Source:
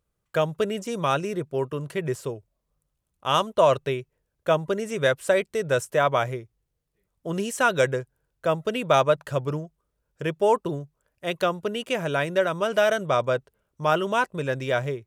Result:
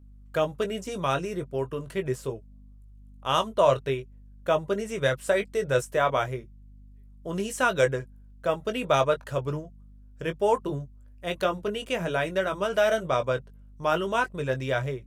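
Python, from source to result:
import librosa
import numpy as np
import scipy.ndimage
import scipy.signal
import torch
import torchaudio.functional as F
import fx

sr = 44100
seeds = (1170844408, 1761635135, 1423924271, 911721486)

y = fx.add_hum(x, sr, base_hz=50, snr_db=24)
y = fx.chorus_voices(y, sr, voices=6, hz=0.36, base_ms=19, depth_ms=4.0, mix_pct=30)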